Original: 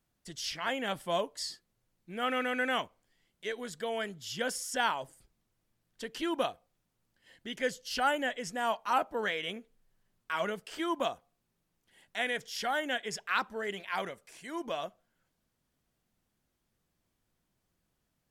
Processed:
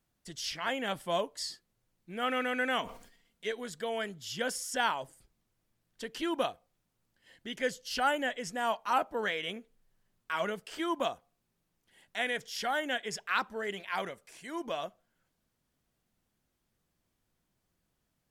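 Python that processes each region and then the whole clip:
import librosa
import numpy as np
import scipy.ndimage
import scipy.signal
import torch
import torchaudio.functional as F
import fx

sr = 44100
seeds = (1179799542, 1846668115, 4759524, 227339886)

y = fx.chain(x, sr, fx.comb(ms=4.3, depth=0.46),
    fx.sustainer(db_per_s=77.0), at=(2.81, 3.51))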